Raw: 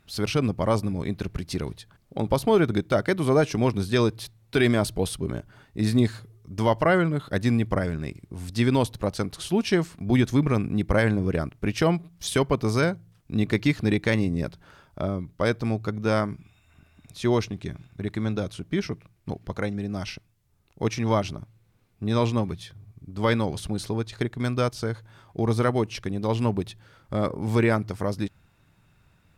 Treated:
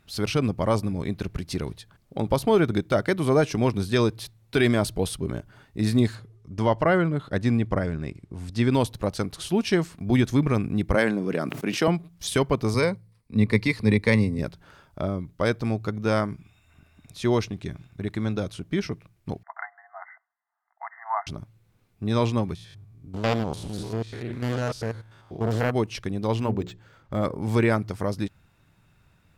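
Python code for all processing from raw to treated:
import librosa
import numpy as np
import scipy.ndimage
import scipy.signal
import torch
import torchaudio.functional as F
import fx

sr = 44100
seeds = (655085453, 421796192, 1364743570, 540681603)

y = fx.chain(x, sr, fx.lowpass(hz=9000.0, slope=12),
    fx.peak_eq(hz=6700.0, db=-4.0, octaves=2.9), at=(6.15, 8.71))
y = fx.chain(y, sr, fx.highpass(hz=180.0, slope=24),
    fx.sustainer(db_per_s=52.0), at=(10.95, 11.88))
y = fx.chain(y, sr, fx.ripple_eq(per_octave=0.92, db=9),
    fx.band_widen(depth_pct=40), at=(12.74, 14.39))
y = fx.chain(y, sr, fx.brickwall_bandpass(low_hz=650.0, high_hz=2100.0),
    fx.dynamic_eq(hz=910.0, q=4.7, threshold_db=-39.0, ratio=4.0, max_db=3), at=(19.43, 21.27))
y = fx.chain(y, sr, fx.spec_steps(hold_ms=100),
    fx.doppler_dist(depth_ms=0.53), at=(22.55, 25.71))
y = fx.chain(y, sr, fx.lowpass(hz=10000.0, slope=12),
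    fx.hum_notches(base_hz=60, count=9),
    fx.resample_linear(factor=4), at=(26.4, 27.25))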